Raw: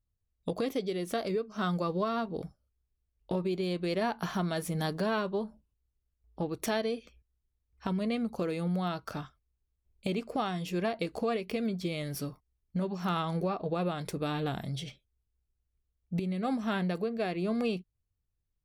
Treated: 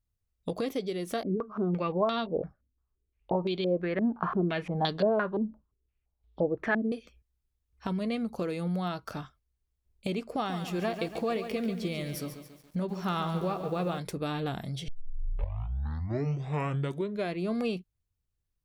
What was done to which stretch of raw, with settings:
1.23–6.92 s: step-sequenced low-pass 5.8 Hz 270–3600 Hz
10.31–13.99 s: bit-crushed delay 141 ms, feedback 55%, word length 9-bit, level -9 dB
14.88 s: tape start 2.50 s

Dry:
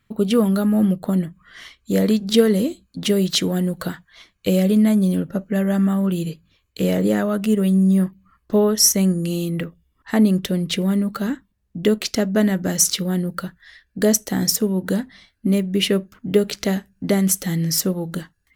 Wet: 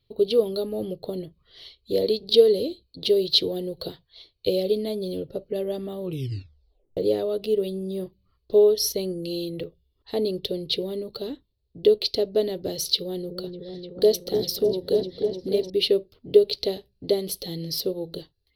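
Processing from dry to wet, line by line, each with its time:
6.01 s: tape stop 0.96 s
12.84–15.70 s: delay with an opening low-pass 300 ms, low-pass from 400 Hz, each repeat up 1 oct, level -3 dB
whole clip: FFT filter 130 Hz 0 dB, 200 Hz -16 dB, 420 Hz +7 dB, 1.6 kHz -20 dB, 4.3 kHz +10 dB, 7.1 kHz -22 dB, 11 kHz -6 dB; trim -4 dB

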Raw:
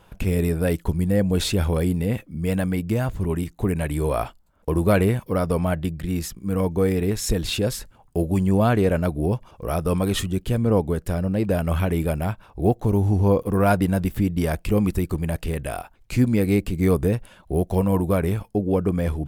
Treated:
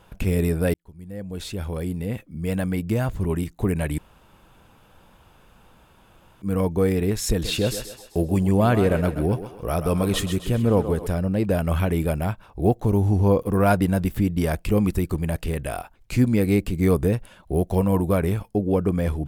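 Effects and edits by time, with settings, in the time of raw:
0.74–3.02 s: fade in
3.98–6.42 s: room tone
7.29–11.07 s: thinning echo 130 ms, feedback 47%, high-pass 290 Hz, level -9 dB

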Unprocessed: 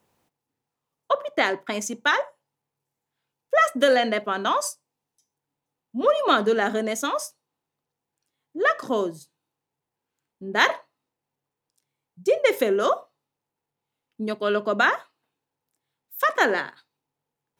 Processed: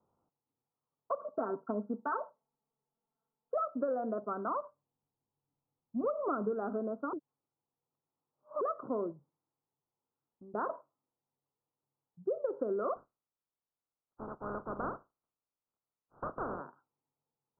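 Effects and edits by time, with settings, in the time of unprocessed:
1.19–3.57 s: comb 4.5 ms, depth 97%
4.61–6.52 s: bass shelf 160 Hz +10.5 dB
7.13–8.61 s: reverse
9.12–10.54 s: compression, threshold -42 dBFS
12.95–16.59 s: spectral contrast reduction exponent 0.17
whole clip: steep low-pass 1.4 kHz 96 dB/octave; dynamic bell 880 Hz, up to -5 dB, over -39 dBFS, Q 2.3; compression 5:1, threshold -22 dBFS; trim -8 dB

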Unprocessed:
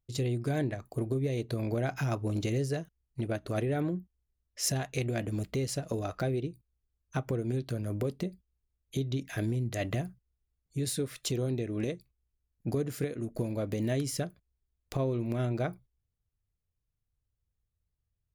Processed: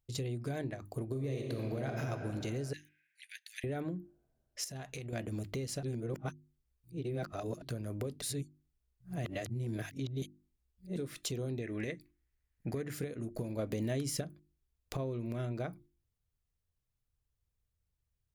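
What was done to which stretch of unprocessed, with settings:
1.09–2.03 s: reverb throw, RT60 2.8 s, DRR 1.5 dB
2.73–3.64 s: steep high-pass 1.7 kHz 96 dB/octave
4.64–5.13 s: compression, threshold -39 dBFS
5.83–7.62 s: reverse
8.22–10.97 s: reverse
11.62–12.94 s: peaking EQ 1.9 kHz +13 dB 0.69 oct
13.59–14.21 s: gain +6.5 dB
15.12–15.58 s: band-stop 800 Hz, Q 8.8
whole clip: hum notches 50/100/150/200/250/300/350 Hz; compression 2.5:1, threshold -37 dBFS

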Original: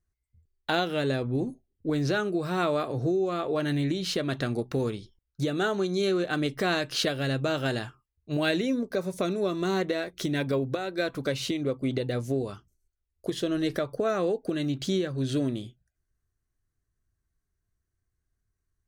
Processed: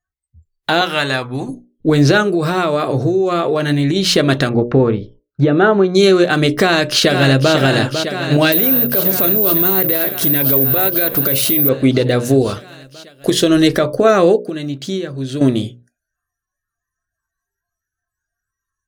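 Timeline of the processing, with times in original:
0.81–1.49 s: resonant low shelf 660 Hz -10 dB, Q 1.5
2.22–3.96 s: compression 5:1, threshold -28 dBFS
4.49–5.95 s: low-pass 1.7 kHz
6.60–7.53 s: echo throw 500 ms, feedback 80%, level -9.5 dB
8.52–11.69 s: careless resampling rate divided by 3×, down none, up zero stuff
12.25–13.68 s: treble shelf 4.3 kHz +6.5 dB
14.39–15.41 s: gain -10.5 dB
whole clip: hum notches 60/120/180/240/300/360/420/480/540/600 Hz; spectral noise reduction 24 dB; loudness maximiser +17.5 dB; trim -1 dB

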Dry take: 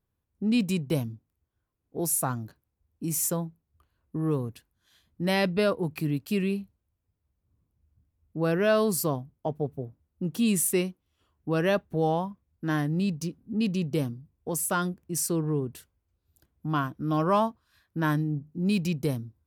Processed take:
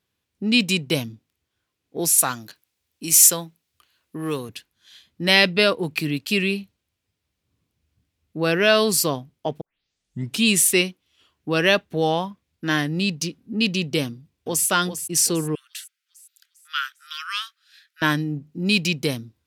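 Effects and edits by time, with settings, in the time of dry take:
2.18–4.49 s: tilt EQ +2 dB/octave
9.61 s: tape start 0.84 s
14.06–14.67 s: echo throw 400 ms, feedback 50%, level -9.5 dB
15.55–18.02 s: Chebyshev high-pass 1.3 kHz, order 6
whole clip: frequency weighting D; trim +5 dB

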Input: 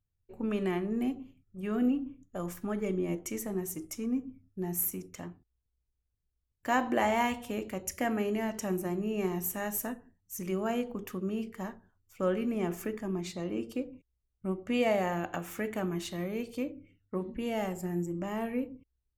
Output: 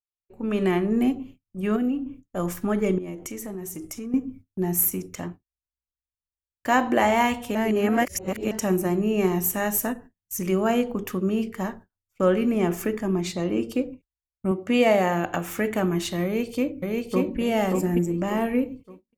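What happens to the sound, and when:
1.76–2.37 s: compression 1.5:1, threshold -43 dBFS
2.98–4.14 s: compression 5:1, threshold -41 dBFS
7.55–8.51 s: reverse
14.51–15.25 s: high-pass 110 Hz
16.24–17.40 s: echo throw 580 ms, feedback 35%, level -1.5 dB
whole clip: gate -55 dBFS, range -27 dB; level rider gain up to 13.5 dB; endings held to a fixed fall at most 420 dB/s; trim -4 dB

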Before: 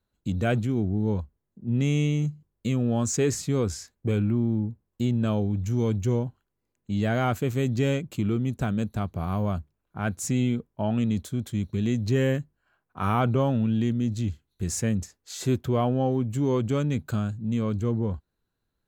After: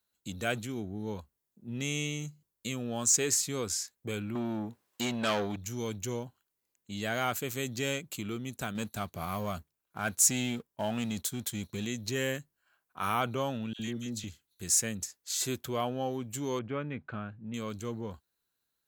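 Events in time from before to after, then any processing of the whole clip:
4.35–5.56 s: overdrive pedal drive 22 dB, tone 3.1 kHz, clips at -13.5 dBFS
8.75–11.85 s: waveshaping leveller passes 1
13.73–14.24 s: phase dispersion lows, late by 63 ms, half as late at 1.5 kHz
16.59–17.54 s: low-pass 2.3 kHz 24 dB/octave
whole clip: tilt EQ +3.5 dB/octave; trim -4 dB

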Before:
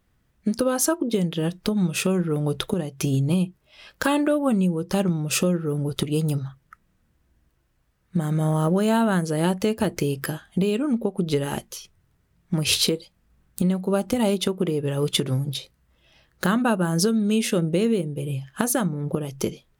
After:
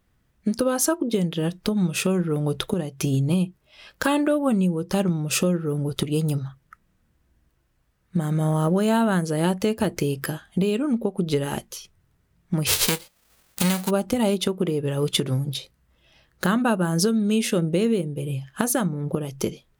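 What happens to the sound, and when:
12.66–13.89 s: formants flattened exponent 0.3

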